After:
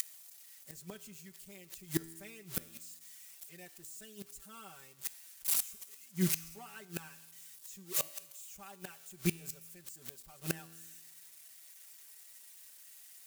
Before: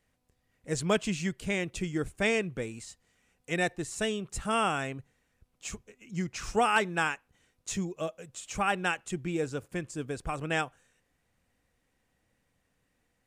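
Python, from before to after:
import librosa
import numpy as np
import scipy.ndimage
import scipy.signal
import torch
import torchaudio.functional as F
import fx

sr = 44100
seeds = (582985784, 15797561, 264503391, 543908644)

y = x + 0.5 * 10.0 ** (-22.5 / 20.0) * np.diff(np.sign(x), prepend=np.sign(x[:1]))
y = fx.high_shelf(y, sr, hz=5000.0, db=4.0)
y = y + 0.95 * np.pad(y, (int(5.2 * sr / 1000.0), 0))[:len(y)]
y = fx.gate_flip(y, sr, shuts_db=-15.0, range_db=-28)
y = fx.comb_fb(y, sr, f0_hz=82.0, decay_s=1.2, harmonics='all', damping=0.0, mix_pct=50)
y = y * librosa.db_to_amplitude(5.0)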